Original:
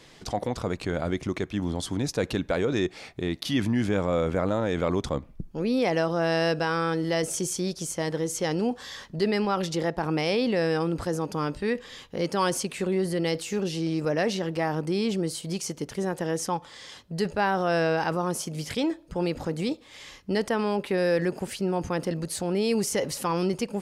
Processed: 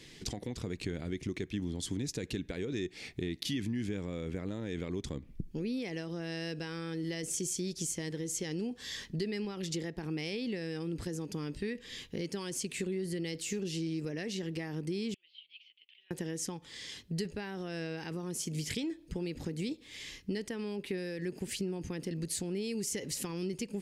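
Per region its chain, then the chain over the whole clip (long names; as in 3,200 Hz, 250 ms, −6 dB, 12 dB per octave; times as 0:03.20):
0:15.14–0:16.11: flat-topped band-pass 3,000 Hz, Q 3.3 + high-frequency loss of the air 360 metres
whole clip: dynamic equaliser 7,300 Hz, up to +5 dB, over −52 dBFS, Q 4; downward compressor 6 to 1, threshold −32 dBFS; flat-topped bell 880 Hz −12 dB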